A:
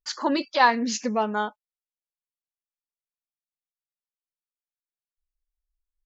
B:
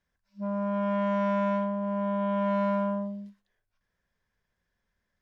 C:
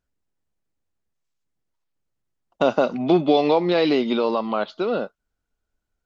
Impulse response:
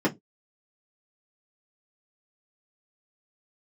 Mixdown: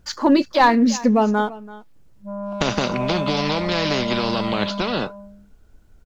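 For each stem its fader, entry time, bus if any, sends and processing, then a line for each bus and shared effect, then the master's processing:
−1.5 dB, 0.00 s, no send, echo send −19 dB, leveller curve on the samples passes 1
−10.5 dB, 1.85 s, no send, echo send −8 dB, flat-topped bell 870 Hz +9 dB; gain into a clipping stage and back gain 19.5 dB
−3.0 dB, 0.00 s, no send, no echo send, every bin compressed towards the loudest bin 4 to 1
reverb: not used
echo: single-tap delay 335 ms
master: low-shelf EQ 470 Hz +11.5 dB

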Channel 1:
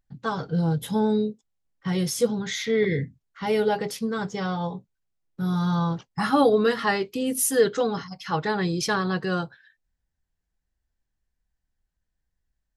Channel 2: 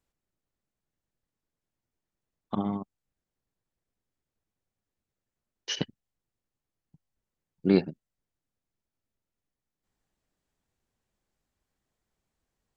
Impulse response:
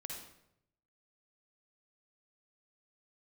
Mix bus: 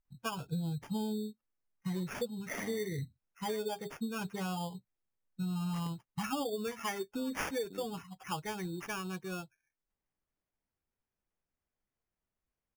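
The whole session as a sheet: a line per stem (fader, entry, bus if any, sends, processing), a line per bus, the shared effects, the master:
0:08.31 −1.5 dB → 0:08.62 −10 dB, 0.00 s, no send, spectral dynamics exaggerated over time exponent 1.5; parametric band 4,400 Hz −10.5 dB 0.81 octaves
−10.0 dB, 0.05 s, no send, downward compressor 2.5 to 1, threshold −30 dBFS, peak gain reduction 10 dB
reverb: not used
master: decimation without filtering 11×; downward compressor 10 to 1, threshold −33 dBFS, peak gain reduction 16.5 dB

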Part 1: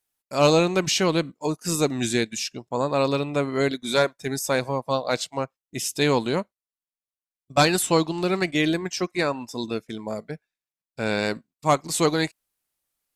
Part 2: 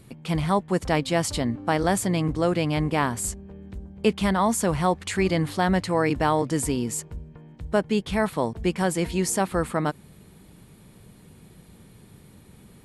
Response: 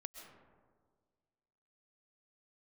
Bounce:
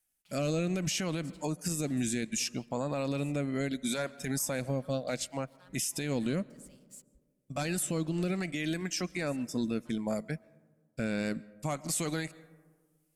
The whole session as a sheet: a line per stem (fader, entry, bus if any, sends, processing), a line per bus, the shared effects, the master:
+3.0 dB, 0.00 s, send −15 dB, graphic EQ with 15 bands 100 Hz −10 dB, 400 Hz −9 dB, 1,000 Hz −8 dB, 4,000 Hz −7 dB, 10,000 Hz +4 dB; downward compressor 1.5 to 1, threshold −33 dBFS, peak gain reduction 6 dB; rotating-speaker cabinet horn 0.65 Hz
−19.5 dB, 0.00 s, send −15 dB, guitar amp tone stack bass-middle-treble 10-0-10; comb filter 4.8 ms, depth 98%; dead-zone distortion −41 dBFS; automatic ducking −11 dB, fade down 0.55 s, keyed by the first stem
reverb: on, RT60 1.7 s, pre-delay 90 ms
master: low-shelf EQ 190 Hz +5.5 dB; brickwall limiter −22.5 dBFS, peak gain reduction 12 dB

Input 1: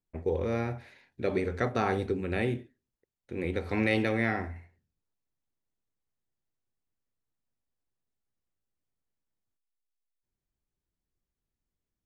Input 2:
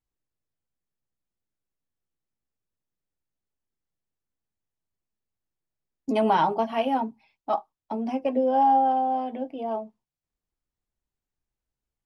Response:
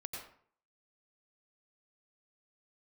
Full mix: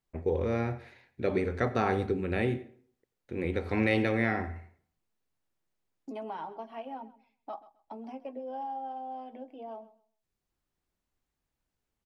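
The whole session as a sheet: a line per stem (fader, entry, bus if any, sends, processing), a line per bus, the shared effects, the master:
−0.5 dB, 0.00 s, send −13 dB, no echo send, no processing
−15.5 dB, 0.00 s, no send, echo send −17.5 dB, low-shelf EQ 140 Hz −10.5 dB; multiband upward and downward compressor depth 70%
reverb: on, RT60 0.55 s, pre-delay 84 ms
echo: repeating echo 131 ms, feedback 20%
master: high-shelf EQ 4,400 Hz −5.5 dB

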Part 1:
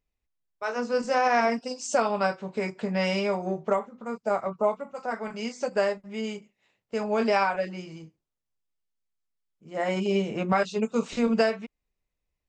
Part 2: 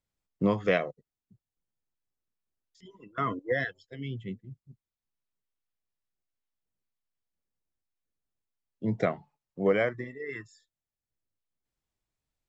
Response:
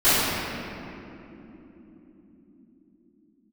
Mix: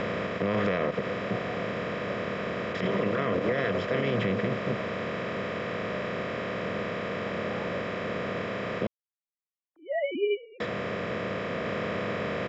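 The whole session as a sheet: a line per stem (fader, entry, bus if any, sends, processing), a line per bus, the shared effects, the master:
−1.0 dB, 0.15 s, no send, three sine waves on the formant tracks; automatic ducking −20 dB, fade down 0.30 s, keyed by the second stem
+1.0 dB, 0.00 s, muted 0:08.87–0:10.60, no send, compressor on every frequency bin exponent 0.2; parametric band 4,500 Hz +7.5 dB 0.91 octaves; notch filter 1,300 Hz, Q 16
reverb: not used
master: high-shelf EQ 5,200 Hz −8 dB; brickwall limiter −18 dBFS, peak gain reduction 11 dB

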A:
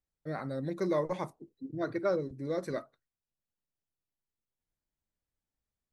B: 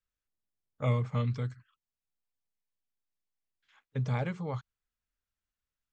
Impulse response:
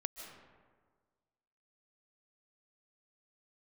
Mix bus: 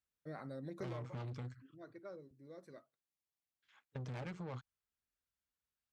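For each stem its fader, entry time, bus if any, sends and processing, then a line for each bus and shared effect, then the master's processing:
0:00.85 −8 dB → 0:01.17 −20.5 dB, 0.00 s, no send, no processing
+0.5 dB, 0.00 s, no send, tube saturation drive 37 dB, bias 0.75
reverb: not used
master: high-pass filter 52 Hz; downward compressor 2.5 to 1, threshold −43 dBFS, peak gain reduction 7.5 dB

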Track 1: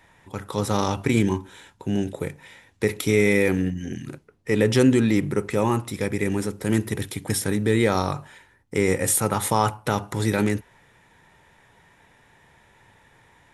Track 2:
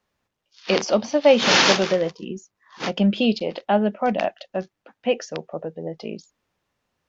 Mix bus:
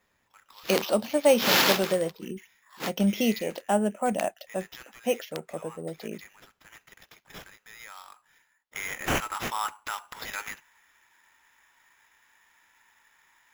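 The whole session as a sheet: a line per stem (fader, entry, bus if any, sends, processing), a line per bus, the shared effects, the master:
0:08.28 −16.5 dB → 0:08.76 −4 dB, 0.00 s, no send, high-pass filter 1,000 Hz 24 dB per octave
+3.0 dB, 0.00 s, no send, automatic ducking −8 dB, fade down 0.85 s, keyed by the first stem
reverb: not used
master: decimation without filtering 5×; notch filter 5,900 Hz, Q 29

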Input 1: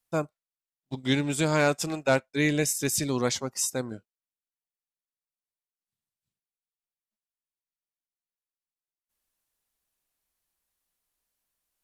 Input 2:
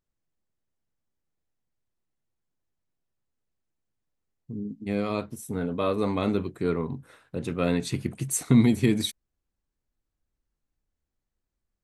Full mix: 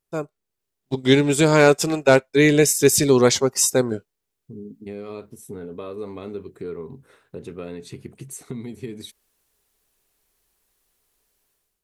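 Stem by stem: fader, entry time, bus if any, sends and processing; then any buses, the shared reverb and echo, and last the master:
−3.0 dB, 0.00 s, no send, automatic gain control gain up to 15 dB
−2.0 dB, 0.00 s, no send, downward compressor 3 to 1, threshold −34 dBFS, peak gain reduction 15 dB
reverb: not used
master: parametric band 410 Hz +10 dB 0.34 octaves

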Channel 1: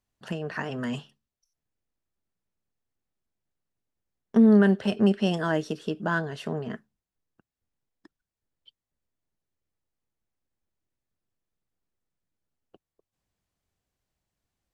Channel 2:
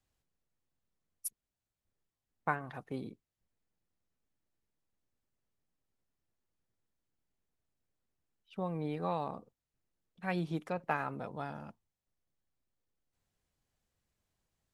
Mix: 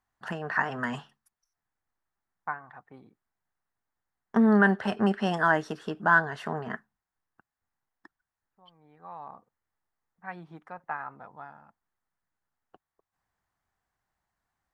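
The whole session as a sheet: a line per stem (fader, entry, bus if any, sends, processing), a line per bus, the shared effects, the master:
−4.0 dB, 0.00 s, no send, no processing
−11.0 dB, 0.00 s, no send, low-pass that shuts in the quiet parts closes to 760 Hz, open at −36.5 dBFS; high-shelf EQ 5,100 Hz −11 dB; automatic ducking −17 dB, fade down 1.40 s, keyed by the first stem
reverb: not used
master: flat-topped bell 1,200 Hz +12 dB

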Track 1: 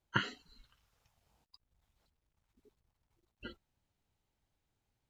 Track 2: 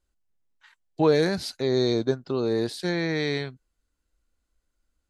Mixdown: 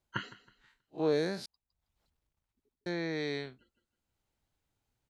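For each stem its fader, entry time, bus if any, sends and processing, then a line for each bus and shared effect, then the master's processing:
0.0 dB, 0.00 s, no send, echo send −23 dB, automatic ducking −17 dB, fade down 0.65 s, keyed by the second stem
−7.5 dB, 0.00 s, muted 0:01.46–0:02.86, no send, no echo send, spectrum smeared in time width 83 ms; high-pass filter 170 Hz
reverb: not used
echo: repeating echo 160 ms, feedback 32%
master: no processing

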